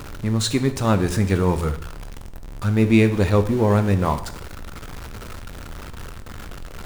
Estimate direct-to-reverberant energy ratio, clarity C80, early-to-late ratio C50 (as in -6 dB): 9.5 dB, 16.0 dB, 13.0 dB